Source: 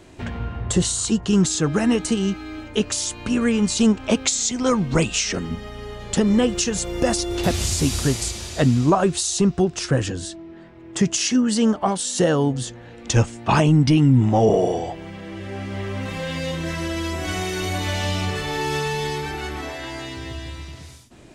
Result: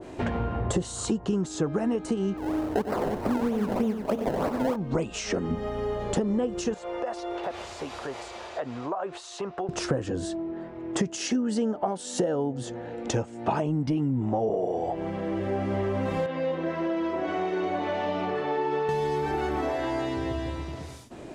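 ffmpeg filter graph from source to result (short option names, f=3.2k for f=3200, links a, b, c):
-filter_complex "[0:a]asettb=1/sr,asplit=3[a][b][c];[a]atrim=end=2.374[d];[b]atrim=start=2.37:end=4.76,asetpts=PTS-STARTPTS,afade=t=in:d=0.004:c=qsin,afade=t=out:st=2.386:d=0.004:c=qsin,acrusher=samples=26:mix=1:aa=0.000001:lfo=1:lforange=26:lforate=3.2,aecho=1:1:93|331:0.355|0.266,atrim=end_sample=105399[e];[c]atrim=start=4.756[f];[d][e]acrossfade=d=0.004:c1=hsin:c2=qsin[g];[g][f]acrossfade=d=0.004:c1=qsin:c2=hsin,asettb=1/sr,asplit=3[h][i][j];[h]atrim=end=6.744[k];[i]atrim=start=6.74:end=9.69,asetpts=PTS-STARTPTS,afade=t=in:d=0.004:c=qsin,afade=t=out:st=2.946:d=0.004:c=qsin,lowpass=9.8k,acrossover=split=530 3600:gain=0.0794 1 0.2[l][m][n];[l][m][n]amix=inputs=3:normalize=0,acompressor=threshold=-34dB:ratio=6:attack=3.2:release=140:knee=1:detection=peak[o];[j]atrim=start=9.686[p];[k][o]acrossfade=d=0.004:c1=hsin:c2=qsin[q];[q][p]acrossfade=d=0.004:c1=qsin:c2=hsin,asettb=1/sr,asplit=3[r][s][t];[r]atrim=end=11.104[u];[s]atrim=start=11.1:end=13.62,asetpts=PTS-STARTPTS,afade=t=in:d=0.004:c=qsin,afade=t=out:st=2.516:d=0.004:c=qsin,highpass=f=100:p=1,bandreject=f=1.1k:w=7.6[v];[t]atrim=start=13.616[w];[u][v]acrossfade=d=0.004:c1=hsin:c2=qsin[x];[x][w]acrossfade=d=0.004:c1=qsin:c2=hsin,asettb=1/sr,asplit=3[y][z][aa];[y]atrim=end=16.264[ab];[z]atrim=start=16.26:end=18.89,asetpts=PTS-STARTPTS,afade=t=in:d=0.004:c=qsin,afade=t=out:st=2.626:d=0.004:c=qsin,flanger=delay=5.8:depth=3.1:regen=-78:speed=1.5:shape=triangular,highpass=220,lowpass=3.2k[ac];[aa]atrim=start=18.886[ad];[ab][ac]acrossfade=d=0.004:c1=hsin:c2=qsin[ae];[ae][ad]acrossfade=d=0.004:c1=qsin:c2=hsin,equalizer=f=550:w=0.42:g=10.5,acompressor=threshold=-21dB:ratio=12,adynamicequalizer=threshold=0.00631:dfrequency=1500:dqfactor=0.7:tfrequency=1500:tqfactor=0.7:attack=5:release=100:ratio=0.375:range=3:mode=cutabove:tftype=highshelf,volume=-2dB"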